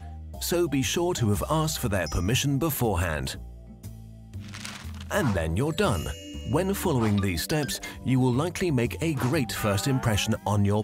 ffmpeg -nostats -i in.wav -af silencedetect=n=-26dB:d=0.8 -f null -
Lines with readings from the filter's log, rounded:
silence_start: 3.32
silence_end: 4.55 | silence_duration: 1.23